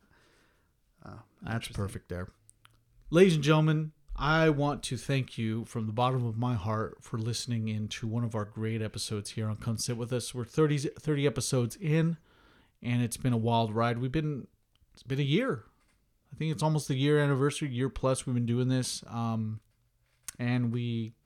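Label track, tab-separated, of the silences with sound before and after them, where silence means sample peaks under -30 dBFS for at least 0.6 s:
2.230000	3.120000	silence
12.130000	12.850000	silence
14.360000	15.100000	silence
15.550000	16.410000	silence
19.520000	20.280000	silence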